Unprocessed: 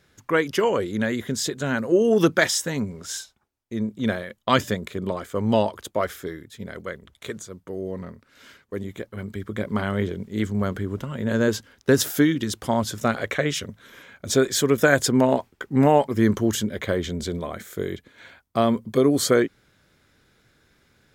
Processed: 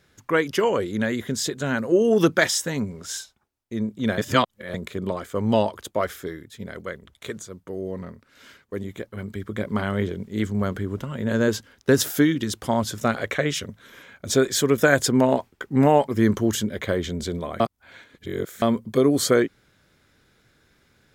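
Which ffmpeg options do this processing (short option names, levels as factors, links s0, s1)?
-filter_complex "[0:a]asplit=5[s0][s1][s2][s3][s4];[s0]atrim=end=4.182[s5];[s1]atrim=start=4.178:end=4.742,asetpts=PTS-STARTPTS,areverse[s6];[s2]atrim=start=4.738:end=17.602[s7];[s3]atrim=start=17.598:end=18.622,asetpts=PTS-STARTPTS,areverse[s8];[s4]atrim=start=18.618[s9];[s5][s6]acrossfade=d=0.004:c1=hsin:c2=hsin[s10];[s10][s7]acrossfade=d=0.004:c1=hsin:c2=hsin[s11];[s11][s8]acrossfade=d=0.004:c1=hsin:c2=hsin[s12];[s12][s9]acrossfade=d=0.004:c1=hsin:c2=hsin"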